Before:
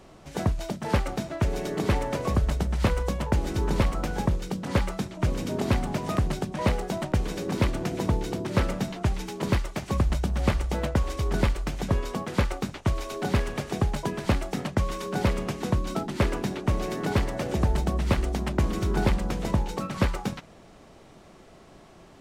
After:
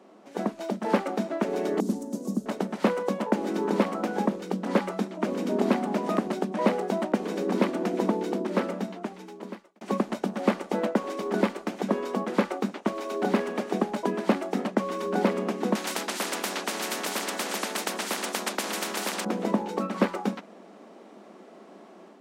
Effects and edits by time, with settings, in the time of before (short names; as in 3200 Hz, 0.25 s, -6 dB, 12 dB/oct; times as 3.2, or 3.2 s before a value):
1.8–2.46 EQ curve 260 Hz 0 dB, 420 Hz -12 dB, 2200 Hz -27 dB, 6500 Hz +4 dB
8.23–9.81 fade out
15.75–19.25 spectral compressor 10:1
whole clip: elliptic high-pass 200 Hz, stop band 40 dB; high shelf 2000 Hz -10 dB; AGC gain up to 5 dB